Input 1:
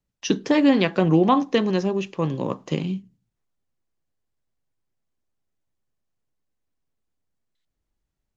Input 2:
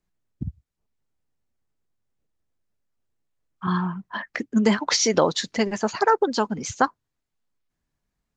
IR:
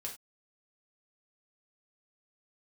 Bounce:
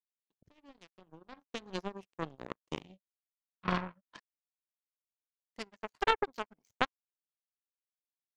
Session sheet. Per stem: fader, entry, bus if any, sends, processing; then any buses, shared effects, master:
1.29 s -22 dB -> 1.79 s -11 dB, 0.00 s, no send, none
-18.5 dB, 0.00 s, muted 4.20–5.56 s, send -17 dB, level rider gain up to 13 dB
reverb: on, pre-delay 3 ms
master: level rider gain up to 11 dB; power-law waveshaper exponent 3

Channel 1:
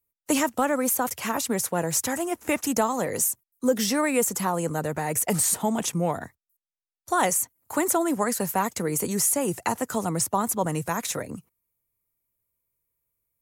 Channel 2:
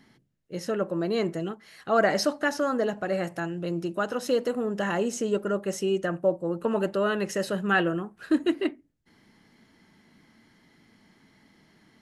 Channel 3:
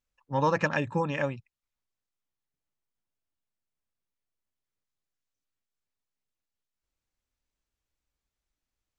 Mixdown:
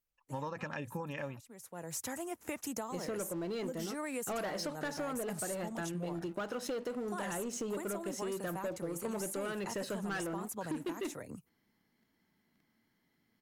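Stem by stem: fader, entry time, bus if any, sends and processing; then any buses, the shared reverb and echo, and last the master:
-10.0 dB, 0.00 s, no send, auto duck -22 dB, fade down 0.30 s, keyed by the third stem
-11.0 dB, 2.40 s, no send, waveshaping leveller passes 3
-6.0 dB, 0.00 s, no send, peak limiter -18.5 dBFS, peak gain reduction 6.5 dB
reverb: none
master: compression 6:1, threshold -36 dBFS, peak gain reduction 12 dB

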